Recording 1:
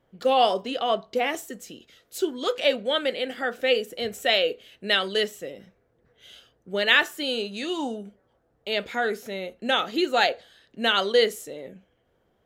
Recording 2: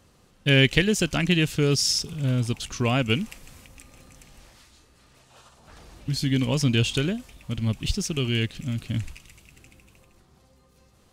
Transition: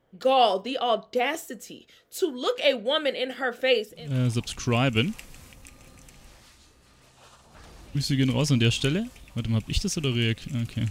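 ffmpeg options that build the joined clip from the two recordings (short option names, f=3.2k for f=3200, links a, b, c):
-filter_complex "[0:a]apad=whole_dur=10.9,atrim=end=10.9,atrim=end=4.21,asetpts=PTS-STARTPTS[a];[1:a]atrim=start=1.92:end=9.03,asetpts=PTS-STARTPTS[b];[a][b]acrossfade=d=0.42:c1=qua:c2=qua"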